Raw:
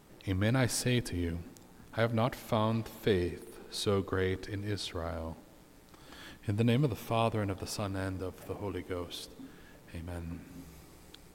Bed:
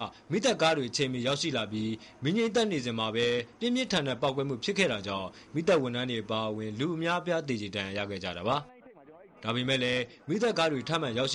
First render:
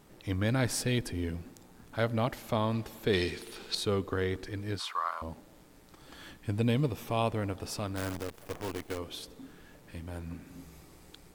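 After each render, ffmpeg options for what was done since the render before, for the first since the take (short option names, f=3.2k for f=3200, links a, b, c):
-filter_complex "[0:a]asettb=1/sr,asplit=3[a][b][c];[a]atrim=end=3.134[d];[b]atrim=start=3.13:end=3.75,asetpts=PTS-STARTPTS,afade=t=in:d=0.004:c=qsin,afade=t=out:st=0.616:d=0.004:c=qsin,equalizer=f=3.8k:t=o:w=2.4:g=15[e];[c]atrim=start=3.746[f];[d][e]acrossfade=d=0.004:c1=hsin:c2=qsin[g];[g][f]acrossfade=d=0.004:c1=qsin:c2=hsin,asettb=1/sr,asplit=3[h][i][j];[h]atrim=end=4.794[k];[i]atrim=start=4.79:end=5.22,asetpts=PTS-STARTPTS,afade=t=in:d=0.004:c=qsin,afade=t=out:st=0.426:d=0.004:c=qsin,highpass=f=1.1k:t=q:w=8.4[l];[j]atrim=start=5.216[m];[k][l]acrossfade=d=0.004:c1=hsin:c2=qsin[n];[n][m]acrossfade=d=0.004:c1=qsin:c2=hsin,asplit=3[o][p][q];[o]afade=t=out:st=7.95:d=0.02[r];[p]acrusher=bits=7:dc=4:mix=0:aa=0.000001,afade=t=in:st=7.95:d=0.02,afade=t=out:st=8.97:d=0.02[s];[q]afade=t=in:st=8.97:d=0.02[t];[r][s][t]amix=inputs=3:normalize=0"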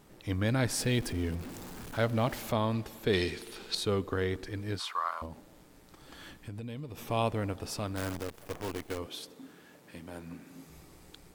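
-filter_complex "[0:a]asettb=1/sr,asplit=3[a][b][c];[a]atrim=end=0.794[d];[b]atrim=start=0.79:end=2.52,asetpts=PTS-STARTPTS,afade=t=in:d=0.004:c=qsin,afade=t=out:st=1.726:d=0.004:c=qsin,aeval=exprs='val(0)+0.5*0.00944*sgn(val(0))':c=same[e];[c]atrim=start=2.516[f];[d][e]acrossfade=d=0.004:c1=hsin:c2=qsin[g];[g][f]acrossfade=d=0.004:c1=qsin:c2=hsin,asettb=1/sr,asplit=3[h][i][j];[h]atrim=end=5.254[k];[i]atrim=start=5.25:end=7.02,asetpts=PTS-STARTPTS,afade=t=in:d=0.004:c=qsin,afade=t=out:st=1.766:d=0.004:c=qsin,acompressor=threshold=-38dB:ratio=6:attack=3.2:release=140:knee=1:detection=peak[l];[j]atrim=start=7.016[m];[k][l]acrossfade=d=0.004:c1=hsin:c2=qsin[n];[n][m]acrossfade=d=0.004:c1=qsin:c2=hsin,asettb=1/sr,asplit=3[o][p][q];[o]atrim=end=9.064[r];[p]atrim=start=9.06:end=10.7,asetpts=PTS-STARTPTS,afade=t=in:d=0.004:c=qsin,afade=t=out:st=1.636:d=0.004:c=qsin,highpass=170[s];[q]atrim=start=10.696[t];[r][s]acrossfade=d=0.004:c1=hsin:c2=qsin[u];[u][t]acrossfade=d=0.004:c1=qsin:c2=hsin"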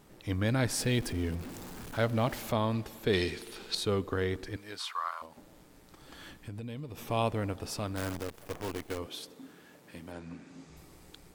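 -filter_complex "[0:a]asettb=1/sr,asplit=3[a][b][c];[a]atrim=end=4.564[d];[b]atrim=start=4.56:end=5.37,asetpts=PTS-STARTPTS,afade=t=in:d=0.004:c=qsin,afade=t=out:st=0.806:d=0.004:c=qsin,highpass=f=910:p=1[e];[c]atrim=start=5.366[f];[d][e]acrossfade=d=0.004:c1=hsin:c2=qsin[g];[g][f]acrossfade=d=0.004:c1=qsin:c2=hsin,asettb=1/sr,asplit=3[h][i][j];[h]atrim=end=10.124[k];[i]atrim=start=10.12:end=10.77,asetpts=PTS-STARTPTS,afade=t=in:d=0.004:c=qsin,afade=t=out:st=0.646:d=0.004:c=qsin,lowpass=f=7.7k:w=0.5412,lowpass=f=7.7k:w=1.3066[l];[j]atrim=start=10.766[m];[k][l]acrossfade=d=0.004:c1=hsin:c2=qsin[n];[n][m]acrossfade=d=0.004:c1=qsin:c2=hsin"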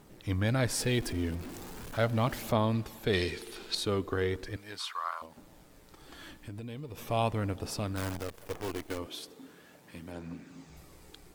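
-af "aphaser=in_gain=1:out_gain=1:delay=3.5:decay=0.26:speed=0.39:type=triangular,acrusher=bits=11:mix=0:aa=0.000001"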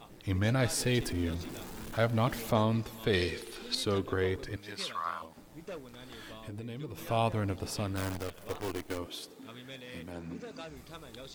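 -filter_complex "[1:a]volume=-18.5dB[a];[0:a][a]amix=inputs=2:normalize=0"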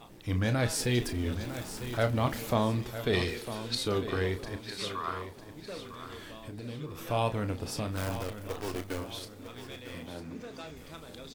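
-filter_complex "[0:a]asplit=2[a][b];[b]adelay=33,volume=-9.5dB[c];[a][c]amix=inputs=2:normalize=0,aecho=1:1:953|1906|2859|3812:0.266|0.101|0.0384|0.0146"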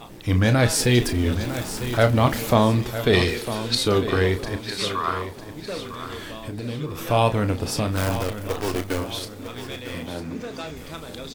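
-af "volume=10dB"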